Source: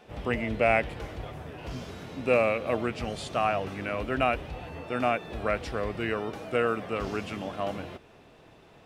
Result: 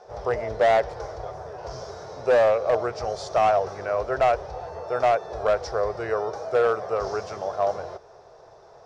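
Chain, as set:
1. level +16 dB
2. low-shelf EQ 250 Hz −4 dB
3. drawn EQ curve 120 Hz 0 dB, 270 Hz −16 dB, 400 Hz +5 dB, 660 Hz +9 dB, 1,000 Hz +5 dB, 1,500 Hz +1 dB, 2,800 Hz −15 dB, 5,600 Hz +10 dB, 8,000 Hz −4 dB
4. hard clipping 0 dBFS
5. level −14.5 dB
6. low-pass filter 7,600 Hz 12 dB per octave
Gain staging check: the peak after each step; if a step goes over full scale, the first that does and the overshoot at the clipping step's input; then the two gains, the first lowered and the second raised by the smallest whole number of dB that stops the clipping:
+6.0, +5.5, +8.5, 0.0, −14.5, −14.0 dBFS
step 1, 8.5 dB
step 1 +7 dB, step 5 −5.5 dB

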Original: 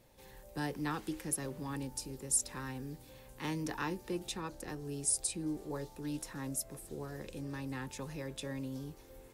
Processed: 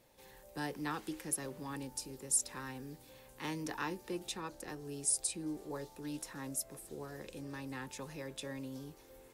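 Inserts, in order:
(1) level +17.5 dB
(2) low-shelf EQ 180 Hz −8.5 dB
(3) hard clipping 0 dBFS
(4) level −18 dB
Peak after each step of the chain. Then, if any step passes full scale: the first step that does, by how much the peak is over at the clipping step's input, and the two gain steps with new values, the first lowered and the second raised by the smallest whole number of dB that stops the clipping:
−2.0, −2.0, −2.0, −20.0 dBFS
no step passes full scale

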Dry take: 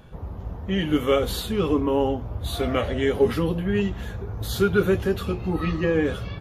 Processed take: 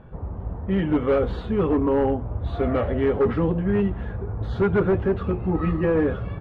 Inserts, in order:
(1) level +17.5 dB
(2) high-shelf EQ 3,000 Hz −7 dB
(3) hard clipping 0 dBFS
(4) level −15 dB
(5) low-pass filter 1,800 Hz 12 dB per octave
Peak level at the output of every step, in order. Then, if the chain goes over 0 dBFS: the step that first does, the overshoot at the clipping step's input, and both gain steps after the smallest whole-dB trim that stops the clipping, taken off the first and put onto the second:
+10.5, +10.0, 0.0, −15.0, −14.5 dBFS
step 1, 10.0 dB
step 1 +7.5 dB, step 4 −5 dB

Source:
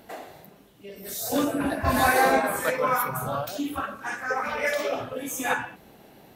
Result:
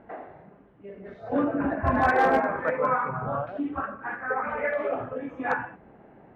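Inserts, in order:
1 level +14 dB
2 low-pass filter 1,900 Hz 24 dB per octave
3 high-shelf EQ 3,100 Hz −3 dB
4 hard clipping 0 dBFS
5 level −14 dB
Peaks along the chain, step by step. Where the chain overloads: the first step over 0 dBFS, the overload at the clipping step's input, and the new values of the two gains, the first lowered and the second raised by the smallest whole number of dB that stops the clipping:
+5.5, +5.0, +5.0, 0.0, −14.0 dBFS
step 1, 5.0 dB
step 1 +9 dB, step 5 −9 dB

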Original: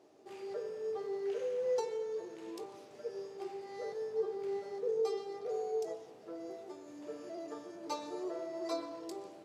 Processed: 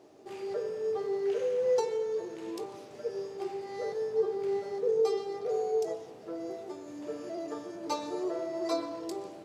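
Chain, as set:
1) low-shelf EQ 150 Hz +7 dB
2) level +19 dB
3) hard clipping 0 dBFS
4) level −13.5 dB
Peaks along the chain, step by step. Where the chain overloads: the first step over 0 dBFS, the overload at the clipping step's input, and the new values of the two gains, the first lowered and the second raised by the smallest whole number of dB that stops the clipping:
−23.5, −4.5, −4.5, −18.0 dBFS
no step passes full scale

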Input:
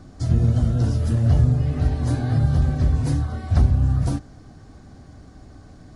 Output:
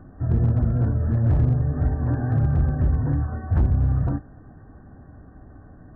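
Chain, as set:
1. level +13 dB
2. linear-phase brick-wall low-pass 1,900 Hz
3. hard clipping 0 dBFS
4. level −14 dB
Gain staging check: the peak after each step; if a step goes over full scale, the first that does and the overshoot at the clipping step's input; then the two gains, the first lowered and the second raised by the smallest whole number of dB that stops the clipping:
+6.5, +6.5, 0.0, −14.0 dBFS
step 1, 6.5 dB
step 1 +6 dB, step 4 −7 dB

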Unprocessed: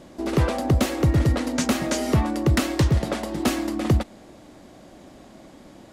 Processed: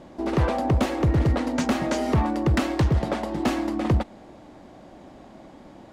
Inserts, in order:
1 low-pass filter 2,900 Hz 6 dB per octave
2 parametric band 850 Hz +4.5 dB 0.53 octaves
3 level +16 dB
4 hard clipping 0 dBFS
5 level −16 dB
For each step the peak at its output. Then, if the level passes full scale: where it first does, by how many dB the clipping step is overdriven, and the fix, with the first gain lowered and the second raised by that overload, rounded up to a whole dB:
−11.0, −10.5, +5.5, 0.0, −16.0 dBFS
step 3, 5.5 dB
step 3 +10 dB, step 5 −10 dB

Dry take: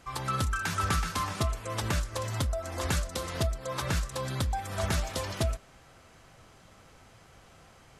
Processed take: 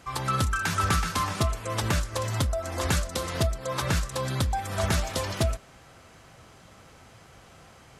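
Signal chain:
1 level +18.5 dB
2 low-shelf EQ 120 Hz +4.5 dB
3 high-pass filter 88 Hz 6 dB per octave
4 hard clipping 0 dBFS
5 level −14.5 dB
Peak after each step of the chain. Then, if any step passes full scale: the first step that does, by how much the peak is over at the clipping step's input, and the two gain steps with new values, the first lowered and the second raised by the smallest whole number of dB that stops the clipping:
+3.0, +3.5, +3.5, 0.0, −14.5 dBFS
step 1, 3.5 dB
step 1 +14.5 dB, step 5 −10.5 dB

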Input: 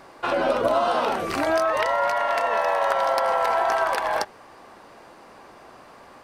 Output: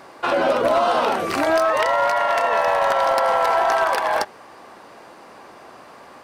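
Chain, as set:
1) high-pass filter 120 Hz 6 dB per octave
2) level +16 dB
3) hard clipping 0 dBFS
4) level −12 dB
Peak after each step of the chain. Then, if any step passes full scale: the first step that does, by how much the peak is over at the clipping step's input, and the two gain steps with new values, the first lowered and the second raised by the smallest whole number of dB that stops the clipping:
−8.5, +7.5, 0.0, −12.0 dBFS
step 2, 7.5 dB
step 2 +8 dB, step 4 −4 dB

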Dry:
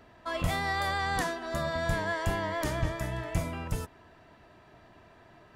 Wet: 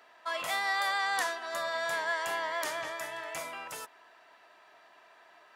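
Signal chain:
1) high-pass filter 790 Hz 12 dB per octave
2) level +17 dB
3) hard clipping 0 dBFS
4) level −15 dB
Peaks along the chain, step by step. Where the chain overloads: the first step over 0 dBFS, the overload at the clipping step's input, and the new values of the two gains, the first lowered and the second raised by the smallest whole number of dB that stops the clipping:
−19.0, −2.0, −2.0, −17.0 dBFS
no step passes full scale

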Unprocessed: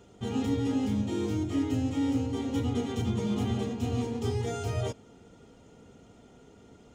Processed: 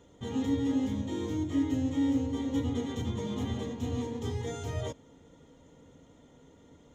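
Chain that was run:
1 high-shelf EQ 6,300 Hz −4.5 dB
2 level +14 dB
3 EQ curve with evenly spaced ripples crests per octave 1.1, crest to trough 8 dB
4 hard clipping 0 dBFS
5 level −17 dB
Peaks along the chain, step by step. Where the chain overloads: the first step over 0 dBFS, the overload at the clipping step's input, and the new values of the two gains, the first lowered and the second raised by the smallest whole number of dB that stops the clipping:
−18.0, −4.0, −2.0, −2.0, −19.0 dBFS
no step passes full scale

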